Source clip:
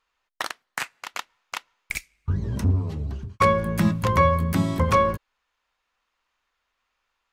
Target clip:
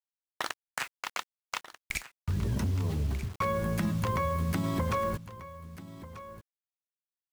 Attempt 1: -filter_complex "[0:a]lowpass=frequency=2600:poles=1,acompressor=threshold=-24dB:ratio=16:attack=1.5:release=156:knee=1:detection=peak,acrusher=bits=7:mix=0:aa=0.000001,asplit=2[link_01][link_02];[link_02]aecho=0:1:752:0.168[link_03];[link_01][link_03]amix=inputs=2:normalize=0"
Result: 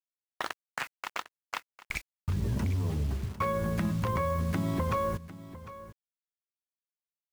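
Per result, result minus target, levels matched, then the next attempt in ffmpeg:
echo 487 ms early; 8,000 Hz band −4.5 dB
-filter_complex "[0:a]lowpass=frequency=2600:poles=1,acompressor=threshold=-24dB:ratio=16:attack=1.5:release=156:knee=1:detection=peak,acrusher=bits=7:mix=0:aa=0.000001,asplit=2[link_01][link_02];[link_02]aecho=0:1:1239:0.168[link_03];[link_01][link_03]amix=inputs=2:normalize=0"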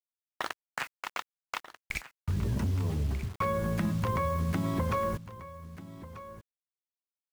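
8,000 Hz band −4.5 dB
-filter_complex "[0:a]lowpass=frequency=10000:poles=1,acompressor=threshold=-24dB:ratio=16:attack=1.5:release=156:knee=1:detection=peak,acrusher=bits=7:mix=0:aa=0.000001,asplit=2[link_01][link_02];[link_02]aecho=0:1:1239:0.168[link_03];[link_01][link_03]amix=inputs=2:normalize=0"

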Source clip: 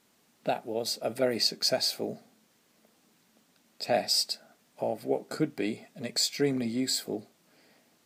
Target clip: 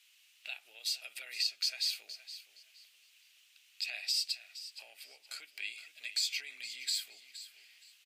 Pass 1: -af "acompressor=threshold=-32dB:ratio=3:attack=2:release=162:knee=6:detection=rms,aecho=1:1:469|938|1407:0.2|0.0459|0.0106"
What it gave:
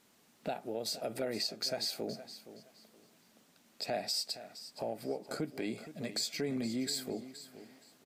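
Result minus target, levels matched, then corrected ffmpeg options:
2,000 Hz band −3.5 dB
-af "acompressor=threshold=-32dB:ratio=3:attack=2:release=162:knee=6:detection=rms,highpass=frequency=2700:width_type=q:width=3.7,aecho=1:1:469|938|1407:0.2|0.0459|0.0106"

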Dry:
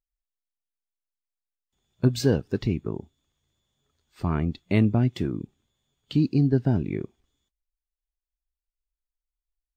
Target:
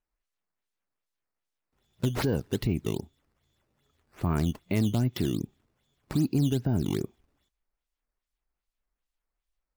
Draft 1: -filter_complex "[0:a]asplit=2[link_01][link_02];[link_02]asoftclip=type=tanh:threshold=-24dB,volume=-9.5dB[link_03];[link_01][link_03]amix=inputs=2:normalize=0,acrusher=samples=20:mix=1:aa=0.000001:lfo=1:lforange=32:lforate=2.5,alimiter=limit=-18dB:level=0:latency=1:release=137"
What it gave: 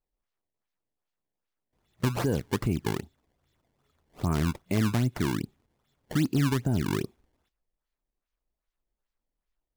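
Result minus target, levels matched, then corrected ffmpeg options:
sample-and-hold swept by an LFO: distortion +7 dB
-filter_complex "[0:a]asplit=2[link_01][link_02];[link_02]asoftclip=type=tanh:threshold=-24dB,volume=-9.5dB[link_03];[link_01][link_03]amix=inputs=2:normalize=0,acrusher=samples=8:mix=1:aa=0.000001:lfo=1:lforange=12.8:lforate=2.5,alimiter=limit=-18dB:level=0:latency=1:release=137"

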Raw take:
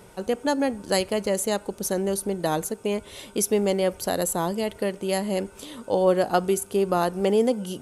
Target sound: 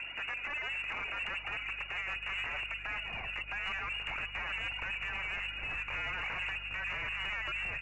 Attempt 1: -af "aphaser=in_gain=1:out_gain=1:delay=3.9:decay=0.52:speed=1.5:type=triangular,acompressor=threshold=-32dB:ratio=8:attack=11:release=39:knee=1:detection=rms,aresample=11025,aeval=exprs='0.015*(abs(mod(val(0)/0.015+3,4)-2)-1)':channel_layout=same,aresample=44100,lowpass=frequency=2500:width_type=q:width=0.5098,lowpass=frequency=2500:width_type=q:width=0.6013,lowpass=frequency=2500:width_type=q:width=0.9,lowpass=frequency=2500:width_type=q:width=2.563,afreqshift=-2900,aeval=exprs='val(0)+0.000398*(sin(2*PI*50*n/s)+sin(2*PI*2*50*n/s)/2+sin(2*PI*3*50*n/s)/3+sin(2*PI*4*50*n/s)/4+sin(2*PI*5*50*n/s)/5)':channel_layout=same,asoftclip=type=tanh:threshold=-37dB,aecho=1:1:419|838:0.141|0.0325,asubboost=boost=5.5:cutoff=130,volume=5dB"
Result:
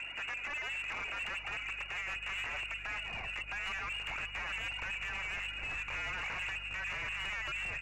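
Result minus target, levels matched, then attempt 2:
soft clipping: distortion +10 dB
-af "aphaser=in_gain=1:out_gain=1:delay=3.9:decay=0.52:speed=1.5:type=triangular,acompressor=threshold=-32dB:ratio=8:attack=11:release=39:knee=1:detection=rms,aresample=11025,aeval=exprs='0.015*(abs(mod(val(0)/0.015+3,4)-2)-1)':channel_layout=same,aresample=44100,lowpass=frequency=2500:width_type=q:width=0.5098,lowpass=frequency=2500:width_type=q:width=0.6013,lowpass=frequency=2500:width_type=q:width=0.9,lowpass=frequency=2500:width_type=q:width=2.563,afreqshift=-2900,aeval=exprs='val(0)+0.000398*(sin(2*PI*50*n/s)+sin(2*PI*2*50*n/s)/2+sin(2*PI*3*50*n/s)/3+sin(2*PI*4*50*n/s)/4+sin(2*PI*5*50*n/s)/5)':channel_layout=same,asoftclip=type=tanh:threshold=-30.5dB,aecho=1:1:419|838:0.141|0.0325,asubboost=boost=5.5:cutoff=130,volume=5dB"

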